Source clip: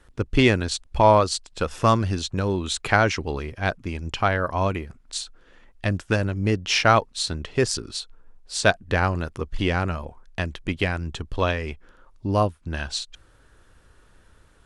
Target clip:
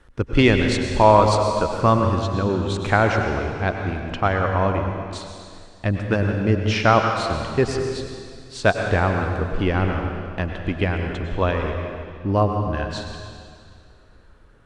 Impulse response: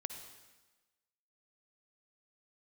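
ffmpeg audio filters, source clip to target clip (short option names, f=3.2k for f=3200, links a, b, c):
-filter_complex "[0:a]asetnsamples=n=441:p=0,asendcmd='1.35 lowpass f 1600',lowpass=f=3.9k:p=1[a];[1:a]atrim=start_sample=2205,asetrate=24255,aresample=44100[b];[a][b]afir=irnorm=-1:irlink=0,volume=2dB"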